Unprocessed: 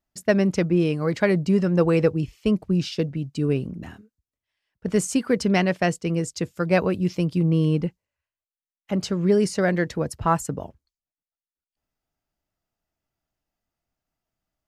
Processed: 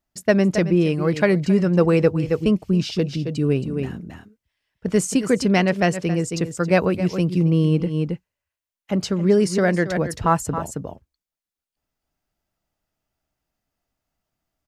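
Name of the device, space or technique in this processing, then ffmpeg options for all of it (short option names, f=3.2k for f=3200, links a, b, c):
ducked delay: -filter_complex "[0:a]asplit=3[a][b][c];[b]adelay=271,volume=-3dB[d];[c]apad=whole_len=659260[e];[d][e]sidechaincompress=threshold=-33dB:ratio=6:attack=5.4:release=115[f];[a][f]amix=inputs=2:normalize=0,volume=2.5dB"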